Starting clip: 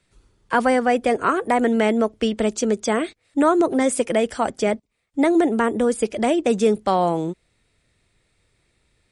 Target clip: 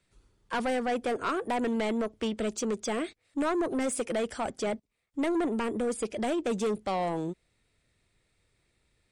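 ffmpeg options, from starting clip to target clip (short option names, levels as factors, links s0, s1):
-af "asoftclip=type=tanh:threshold=0.133,volume=0.473"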